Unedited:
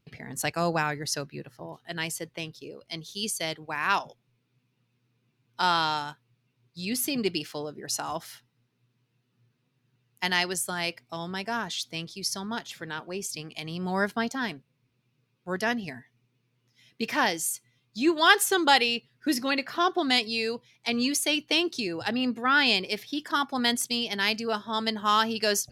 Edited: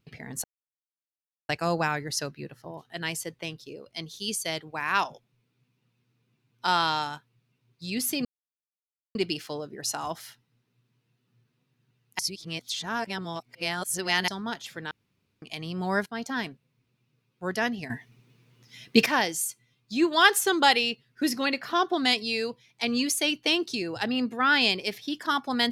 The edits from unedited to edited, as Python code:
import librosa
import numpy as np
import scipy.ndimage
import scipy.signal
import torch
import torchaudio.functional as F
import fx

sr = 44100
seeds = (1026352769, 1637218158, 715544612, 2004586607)

y = fx.edit(x, sr, fx.insert_silence(at_s=0.44, length_s=1.05),
    fx.insert_silence(at_s=7.2, length_s=0.9),
    fx.reverse_span(start_s=10.24, length_s=2.09),
    fx.room_tone_fill(start_s=12.96, length_s=0.51),
    fx.fade_in_from(start_s=14.11, length_s=0.26, floor_db=-16.0),
    fx.clip_gain(start_s=15.95, length_s=1.16, db=12.0), tone=tone)